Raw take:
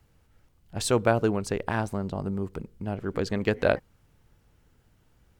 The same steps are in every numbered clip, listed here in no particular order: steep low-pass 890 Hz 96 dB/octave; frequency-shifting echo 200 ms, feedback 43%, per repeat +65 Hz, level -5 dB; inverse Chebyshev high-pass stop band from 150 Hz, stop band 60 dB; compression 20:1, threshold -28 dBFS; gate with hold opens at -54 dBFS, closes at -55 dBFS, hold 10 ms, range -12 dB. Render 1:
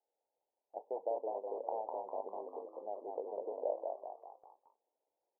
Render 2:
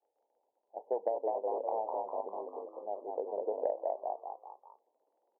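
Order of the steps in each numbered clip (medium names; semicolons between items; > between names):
compression > steep low-pass > frequency-shifting echo > inverse Chebyshev high-pass > gate with hold; steep low-pass > frequency-shifting echo > gate with hold > inverse Chebyshev high-pass > compression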